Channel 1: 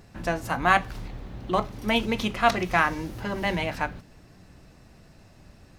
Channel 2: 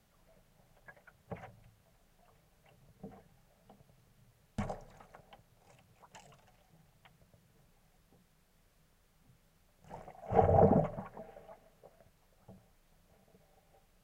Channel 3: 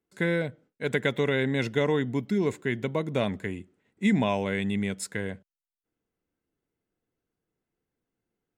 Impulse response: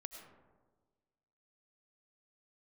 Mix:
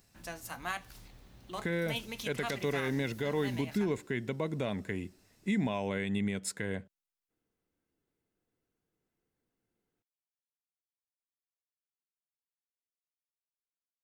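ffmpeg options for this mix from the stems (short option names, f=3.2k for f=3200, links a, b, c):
-filter_complex "[0:a]crystalizer=i=5:c=0,volume=-18dB[a];[2:a]alimiter=limit=-18dB:level=0:latency=1:release=333,adelay=1450,volume=-0.5dB[b];[a][b]amix=inputs=2:normalize=0,alimiter=limit=-22dB:level=0:latency=1:release=141"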